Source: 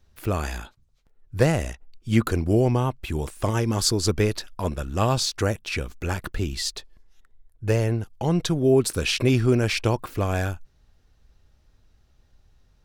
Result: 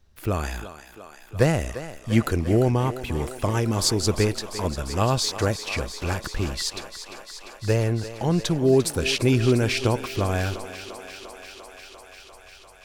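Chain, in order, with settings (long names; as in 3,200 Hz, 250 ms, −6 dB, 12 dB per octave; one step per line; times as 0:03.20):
feedback echo with a high-pass in the loop 347 ms, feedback 82%, high-pass 280 Hz, level −12 dB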